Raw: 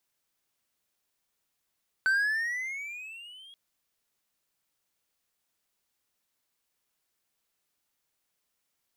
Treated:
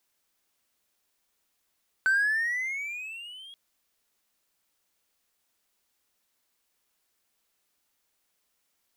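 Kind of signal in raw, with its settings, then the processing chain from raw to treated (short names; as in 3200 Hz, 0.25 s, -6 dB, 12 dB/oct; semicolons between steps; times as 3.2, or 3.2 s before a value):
gliding synth tone triangle, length 1.48 s, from 1520 Hz, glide +13.5 st, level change -27.5 dB, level -19 dB
bell 130 Hz -13.5 dB 0.3 oct; in parallel at -4 dB: soft clip -32.5 dBFS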